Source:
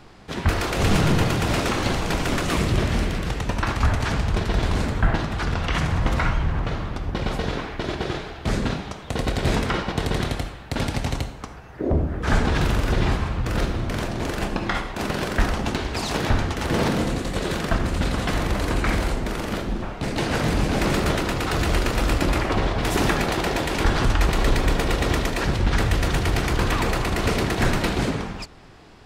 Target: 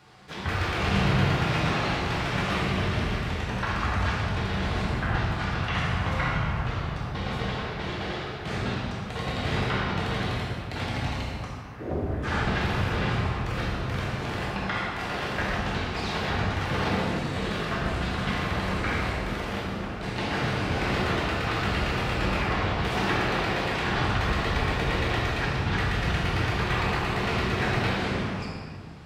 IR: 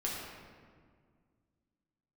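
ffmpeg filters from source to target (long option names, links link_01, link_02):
-filter_complex "[0:a]tiltshelf=frequency=770:gain=3.5[link_01];[1:a]atrim=start_sample=2205[link_02];[link_01][link_02]afir=irnorm=-1:irlink=0,acrossover=split=4700[link_03][link_04];[link_04]acompressor=threshold=-53dB:ratio=4:attack=1:release=60[link_05];[link_03][link_05]amix=inputs=2:normalize=0,highpass=130,equalizer=frequency=290:width_type=o:width=2.7:gain=-14.5"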